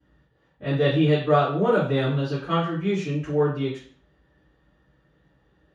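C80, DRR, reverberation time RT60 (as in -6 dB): 9.5 dB, -17.0 dB, 0.45 s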